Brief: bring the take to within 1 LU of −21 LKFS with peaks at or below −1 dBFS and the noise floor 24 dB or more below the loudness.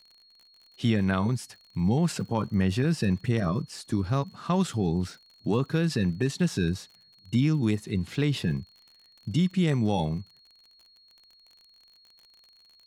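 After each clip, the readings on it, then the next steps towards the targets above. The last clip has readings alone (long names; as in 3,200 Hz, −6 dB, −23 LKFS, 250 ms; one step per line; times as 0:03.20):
crackle rate 48 per second; interfering tone 4,300 Hz; level of the tone −56 dBFS; integrated loudness −27.5 LKFS; sample peak −12.5 dBFS; target loudness −21.0 LKFS
→ click removal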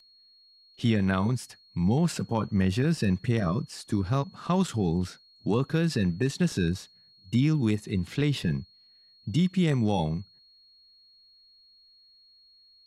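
crackle rate 0.23 per second; interfering tone 4,300 Hz; level of the tone −56 dBFS
→ notch filter 4,300 Hz, Q 30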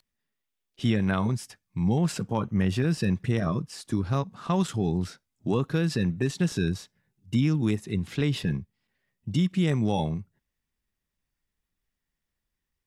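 interfering tone none found; integrated loudness −27.5 LKFS; sample peak −12.5 dBFS; target loudness −21.0 LKFS
→ level +6.5 dB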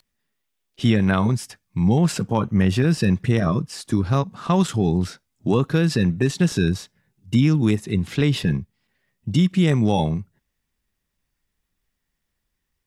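integrated loudness −21.0 LKFS; sample peak −6.0 dBFS; background noise floor −78 dBFS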